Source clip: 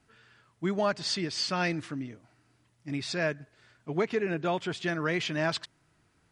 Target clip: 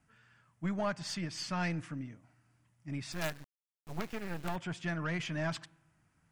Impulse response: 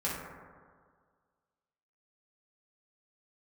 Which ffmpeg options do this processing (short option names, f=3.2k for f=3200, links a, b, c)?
-filter_complex "[0:a]equalizer=f=160:t=o:w=0.67:g=5,equalizer=f=400:t=o:w=0.67:g=-10,equalizer=f=4k:t=o:w=0.67:g=-9,asplit=2[a][b];[1:a]atrim=start_sample=2205,asetrate=83790,aresample=44100[c];[b][c]afir=irnorm=-1:irlink=0,volume=-24dB[d];[a][d]amix=inputs=2:normalize=0,aeval=exprs='0.168*(cos(1*acos(clip(val(0)/0.168,-1,1)))-cos(1*PI/2))+0.0266*(cos(2*acos(clip(val(0)/0.168,-1,1)))-cos(2*PI/2))+0.00376*(cos(3*acos(clip(val(0)/0.168,-1,1)))-cos(3*PI/2))+0.0075*(cos(5*acos(clip(val(0)/0.168,-1,1)))-cos(5*PI/2))+0.00422*(cos(6*acos(clip(val(0)/0.168,-1,1)))-cos(6*PI/2))':c=same,asettb=1/sr,asplit=3[e][f][g];[e]atrim=end=3.124[h];[f]atrim=start=3.12:end=4.56,asetpts=PTS-STARTPTS,afade=t=in:d=0.004:c=qsin,afade=t=out:st=1.436:d=0.004:c=qsin,acrusher=bits=5:dc=4:mix=0:aa=0.000001[i];[g]atrim=start=4.556[j];[h][i]acrossfade=d=0.004:c1=hsin:c2=qsin[k];[k][j]acrossfade=d=0.004:c1=qsin:c2=hsin,volume=-5.5dB"